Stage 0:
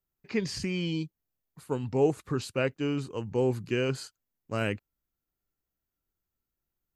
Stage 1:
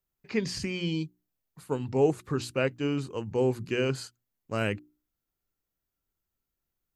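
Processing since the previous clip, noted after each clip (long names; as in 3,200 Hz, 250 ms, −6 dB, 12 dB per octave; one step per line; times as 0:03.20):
mains-hum notches 60/120/180/240/300/360 Hz
level +1 dB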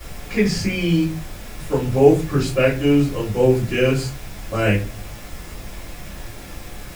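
background noise pink −47 dBFS
convolution reverb RT60 0.30 s, pre-delay 3 ms, DRR −7.5 dB
level −3.5 dB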